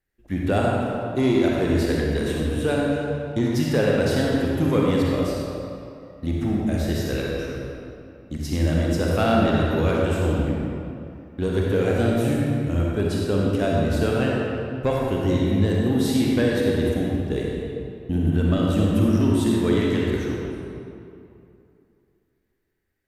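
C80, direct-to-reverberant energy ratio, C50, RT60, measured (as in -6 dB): -1.0 dB, -3.5 dB, -2.5 dB, 2.6 s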